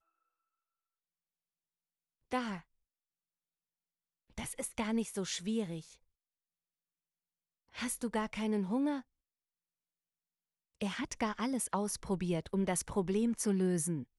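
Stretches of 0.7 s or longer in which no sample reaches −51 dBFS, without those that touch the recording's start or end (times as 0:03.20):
0:02.61–0:04.38
0:05.94–0:07.74
0:09.01–0:10.81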